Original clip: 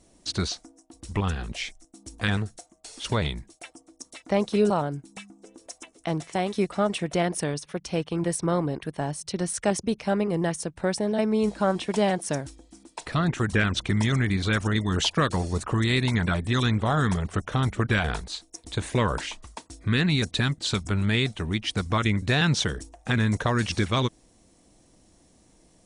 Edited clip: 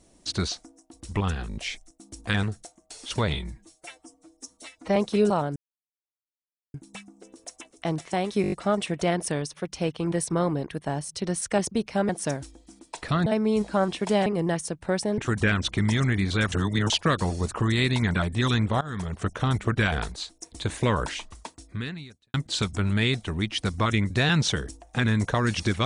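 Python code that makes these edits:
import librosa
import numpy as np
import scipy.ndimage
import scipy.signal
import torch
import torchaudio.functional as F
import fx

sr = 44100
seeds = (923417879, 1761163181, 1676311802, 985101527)

y = fx.edit(x, sr, fx.stutter(start_s=1.49, slice_s=0.02, count=4),
    fx.stretch_span(start_s=3.28, length_s=1.08, factor=1.5),
    fx.insert_silence(at_s=4.96, length_s=1.18),
    fx.stutter(start_s=6.64, slice_s=0.02, count=6),
    fx.swap(start_s=10.21, length_s=0.92, other_s=12.13, other_length_s=1.17),
    fx.reverse_span(start_s=14.64, length_s=0.38),
    fx.fade_in_from(start_s=16.93, length_s=0.47, floor_db=-19.5),
    fx.fade_out_span(start_s=19.58, length_s=0.88, curve='qua'), tone=tone)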